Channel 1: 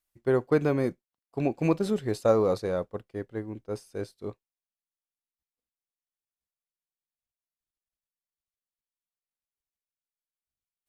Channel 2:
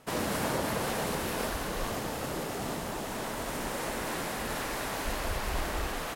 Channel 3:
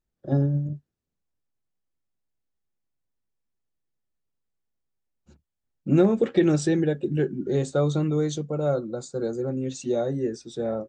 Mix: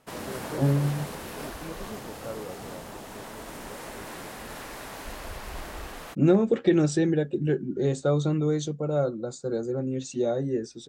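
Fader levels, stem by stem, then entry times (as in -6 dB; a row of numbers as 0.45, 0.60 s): -15.5, -5.5, -1.0 dB; 0.00, 0.00, 0.30 s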